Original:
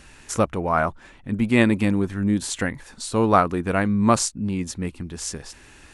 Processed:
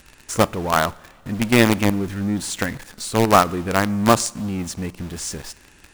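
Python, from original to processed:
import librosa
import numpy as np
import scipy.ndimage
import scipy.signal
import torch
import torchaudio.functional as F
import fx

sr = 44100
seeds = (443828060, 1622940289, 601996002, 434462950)

p1 = fx.quant_companded(x, sr, bits=2)
p2 = x + F.gain(torch.from_numpy(p1), -5.0).numpy()
p3 = fx.rev_double_slope(p2, sr, seeds[0], early_s=0.57, late_s=2.8, knee_db=-13, drr_db=19.5)
y = F.gain(torch.from_numpy(p3), -3.5).numpy()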